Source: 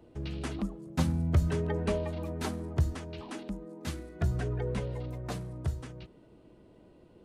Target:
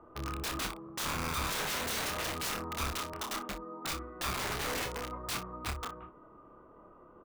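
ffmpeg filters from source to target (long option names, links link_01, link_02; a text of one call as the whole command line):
ffmpeg -i in.wav -af "equalizer=frequency=120:width=0.51:gain=-7.5,aresample=8000,asoftclip=type=hard:threshold=-31dB,aresample=44100,acrusher=bits=6:mode=log:mix=0:aa=0.000001,lowpass=frequency=1200:width_type=q:width=15,aeval=exprs='(mod(35.5*val(0)+1,2)-1)/35.5':channel_layout=same,aecho=1:1:28|60:0.562|0.211" out.wav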